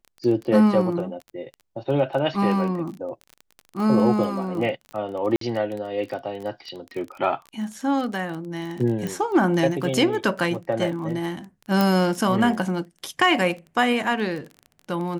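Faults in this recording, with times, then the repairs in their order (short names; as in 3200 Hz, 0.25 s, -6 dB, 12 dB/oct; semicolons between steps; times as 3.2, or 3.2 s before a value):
crackle 24/s -30 dBFS
5.36–5.41 gap 53 ms
9.07 pop
11.81 pop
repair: de-click; interpolate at 5.36, 53 ms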